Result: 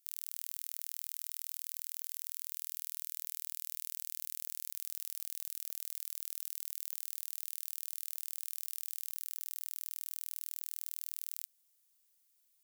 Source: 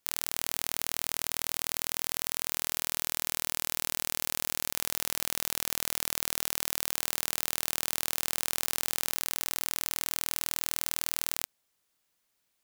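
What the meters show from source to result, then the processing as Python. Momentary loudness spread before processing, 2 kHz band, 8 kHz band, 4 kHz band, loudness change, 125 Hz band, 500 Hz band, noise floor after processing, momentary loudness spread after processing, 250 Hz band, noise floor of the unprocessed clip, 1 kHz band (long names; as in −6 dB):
0 LU, −22.5 dB, −11.5 dB, −17.0 dB, −9.0 dB, below −30 dB, below −25 dB, −73 dBFS, 0 LU, below −30 dB, −77 dBFS, below −25 dB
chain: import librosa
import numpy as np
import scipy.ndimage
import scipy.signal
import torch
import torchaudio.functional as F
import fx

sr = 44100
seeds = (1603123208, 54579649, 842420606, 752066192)

y = np.clip(10.0 ** (16.5 / 20.0) * x, -1.0, 1.0) / 10.0 ** (16.5 / 20.0)
y = librosa.effects.preemphasis(y, coef=0.9, zi=[0.0])
y = y * 10.0 ** (1.5 / 20.0)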